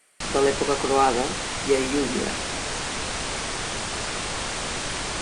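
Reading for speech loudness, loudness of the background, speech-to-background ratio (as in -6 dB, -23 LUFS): -24.5 LUFS, -28.0 LUFS, 3.5 dB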